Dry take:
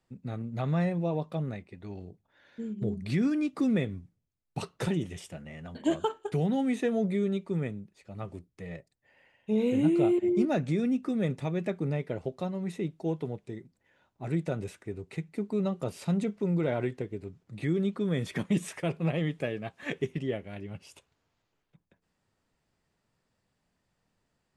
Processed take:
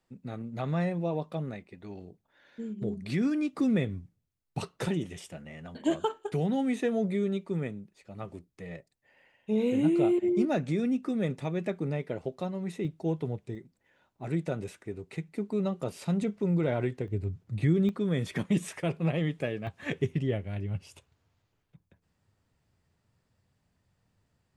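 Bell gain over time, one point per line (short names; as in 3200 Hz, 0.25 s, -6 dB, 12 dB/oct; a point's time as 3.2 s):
bell 91 Hz 1.3 oct
-6 dB
from 3.56 s +2.5 dB
from 4.68 s -4 dB
from 12.85 s +6 dB
from 13.55 s -2.5 dB
from 16.22 s +4 dB
from 17.08 s +14 dB
from 17.89 s +2 dB
from 19.67 s +11.5 dB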